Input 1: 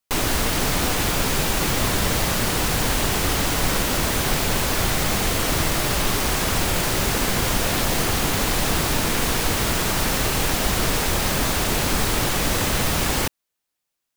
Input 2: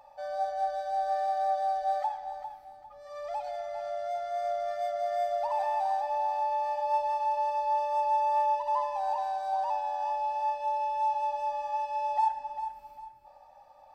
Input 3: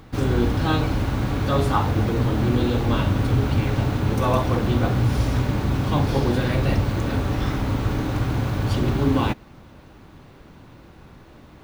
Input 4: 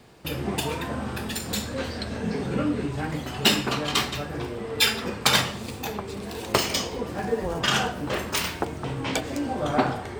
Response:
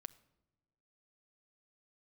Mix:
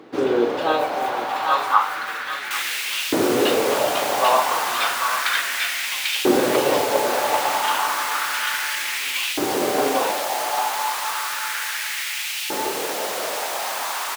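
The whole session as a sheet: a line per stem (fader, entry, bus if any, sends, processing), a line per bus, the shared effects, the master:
−4.5 dB, 2.40 s, no send, no echo send, no processing
0.0 dB, 0.40 s, no send, no echo send, flanger 0.47 Hz, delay 5.8 ms, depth 5.6 ms, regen −67%; noise that follows the level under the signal 13 dB
+1.5 dB, 0.00 s, no send, echo send −3.5 dB, high-pass filter 94 Hz; high-shelf EQ 7,100 Hz −11 dB
−5.0 dB, 0.00 s, no send, echo send −3.5 dB, Chebyshev low-pass filter 3,300 Hz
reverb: not used
echo: single-tap delay 793 ms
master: auto-filter high-pass saw up 0.32 Hz 340–2,800 Hz

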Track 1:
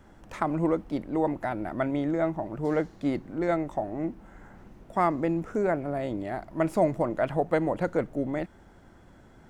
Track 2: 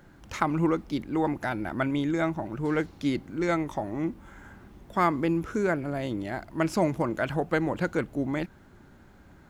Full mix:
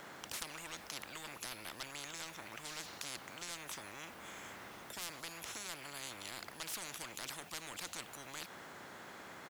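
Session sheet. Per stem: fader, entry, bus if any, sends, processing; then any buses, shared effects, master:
−7.0 dB, 0.00 s, no send, no processing
−2.0 dB, 0.7 ms, no send, no processing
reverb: not used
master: high-pass filter 400 Hz 12 dB per octave; soft clipping −21 dBFS, distortion −13 dB; every bin compressed towards the loudest bin 10 to 1

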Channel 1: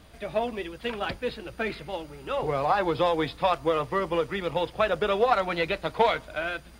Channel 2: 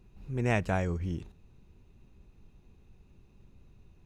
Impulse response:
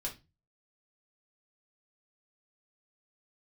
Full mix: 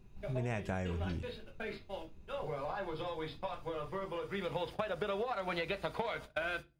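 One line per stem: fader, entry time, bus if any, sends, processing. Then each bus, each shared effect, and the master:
−1.5 dB, 0.00 s, send −10.5 dB, noise gate −36 dBFS, range −39 dB; downward compressor, threshold −25 dBFS, peak gain reduction 9 dB; automatic ducking −20 dB, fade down 0.25 s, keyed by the second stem
−2.0 dB, 0.00 s, send −9 dB, no processing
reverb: on, RT60 0.25 s, pre-delay 4 ms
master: downward compressor 6 to 1, threshold −33 dBFS, peak gain reduction 10.5 dB

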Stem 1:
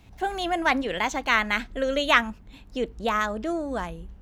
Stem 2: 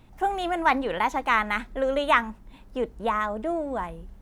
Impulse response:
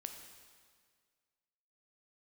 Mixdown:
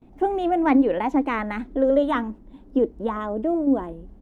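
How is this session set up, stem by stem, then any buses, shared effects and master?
+2.0 dB, 0.00 s, no send, formant filter that steps through the vowels 7.9 Hz
−0.5 dB, 0.9 ms, no send, no processing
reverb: not used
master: noise gate with hold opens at −46 dBFS; drawn EQ curve 150 Hz 0 dB, 280 Hz +12 dB, 1,300 Hz −6 dB, 11,000 Hz −12 dB

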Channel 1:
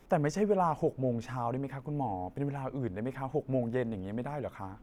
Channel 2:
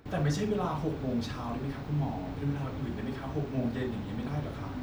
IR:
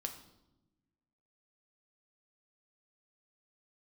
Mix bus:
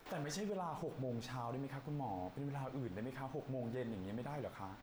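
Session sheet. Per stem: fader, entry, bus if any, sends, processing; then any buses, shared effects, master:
−10.0 dB, 0.00 s, send −5.5 dB, no processing
+1.0 dB, 2.7 ms, no send, high-pass filter 660 Hz 12 dB per octave; automatic ducking −13 dB, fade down 0.65 s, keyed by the first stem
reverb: on, RT60 0.95 s, pre-delay 6 ms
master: high-shelf EQ 7,900 Hz +6 dB; brickwall limiter −34 dBFS, peak gain reduction 12 dB

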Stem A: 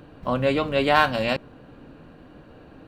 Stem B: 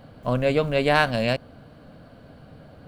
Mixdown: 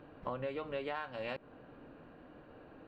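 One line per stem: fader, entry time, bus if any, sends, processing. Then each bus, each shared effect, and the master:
−6.0 dB, 0.00 s, no send, no processing
−18.0 dB, 0.00 s, no send, Butterworth low-pass 2,000 Hz 96 dB per octave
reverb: not used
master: bass and treble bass −7 dB, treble −15 dB; downward compressor 20 to 1, threshold −35 dBFS, peak gain reduction 17.5 dB

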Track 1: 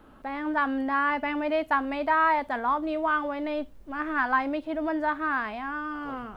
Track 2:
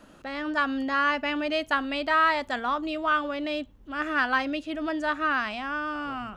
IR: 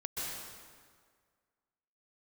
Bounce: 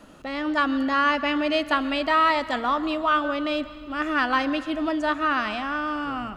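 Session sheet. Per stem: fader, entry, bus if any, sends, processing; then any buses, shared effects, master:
−10.0 dB, 0.00 s, no send, no processing
+2.5 dB, 0.00 s, send −15 dB, notch filter 1,600 Hz, Q 14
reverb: on, RT60 1.8 s, pre-delay 117 ms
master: no processing

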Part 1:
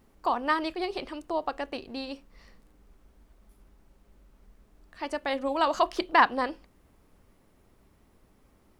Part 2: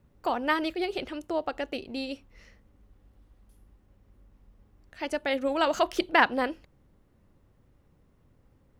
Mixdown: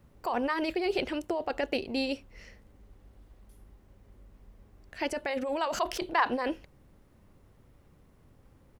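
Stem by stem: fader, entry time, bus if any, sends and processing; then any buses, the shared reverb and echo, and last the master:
−6.0 dB, 0.00 s, no send, Butterworth high-pass 340 Hz 48 dB per octave
−1.0 dB, 0.4 ms, no send, compressor whose output falls as the input rises −31 dBFS, ratio −0.5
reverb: not used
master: no processing

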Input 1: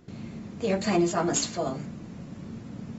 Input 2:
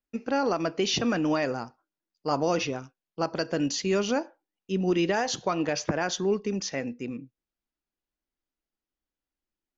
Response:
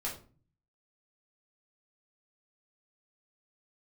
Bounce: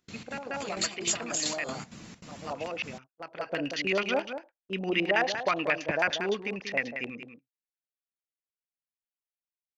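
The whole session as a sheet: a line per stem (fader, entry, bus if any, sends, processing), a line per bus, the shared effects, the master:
−1.5 dB, 0.00 s, no send, no echo send, gate pattern "xxx.x..xx.xxx.x" 196 BPM −12 dB; compressor whose output falls as the input rises −30 dBFS, ratio −0.5
0.0 dB, 0.00 s, no send, echo send −9 dB, auto-filter low-pass square 9.3 Hz 660–2,300 Hz; automatic ducking −21 dB, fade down 0.65 s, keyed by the first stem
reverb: not used
echo: single-tap delay 187 ms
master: noise gate −44 dBFS, range −20 dB; tilt shelving filter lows −9 dB, about 1,200 Hz

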